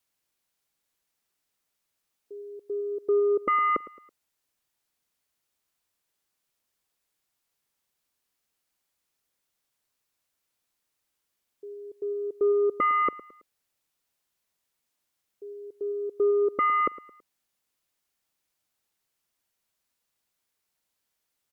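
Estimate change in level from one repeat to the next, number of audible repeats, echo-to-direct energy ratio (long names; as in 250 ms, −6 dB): −8.0 dB, 3, −16.5 dB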